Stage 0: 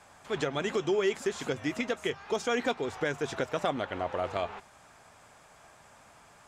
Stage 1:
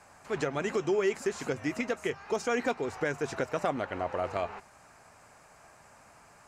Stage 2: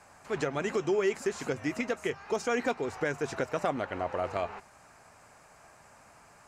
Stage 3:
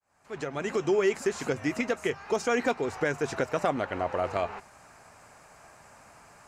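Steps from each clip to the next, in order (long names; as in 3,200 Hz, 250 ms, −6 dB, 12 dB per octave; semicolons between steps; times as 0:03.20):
parametric band 3,400 Hz −11.5 dB 0.24 octaves
no processing that can be heard
fade in at the beginning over 0.92 s; level +3 dB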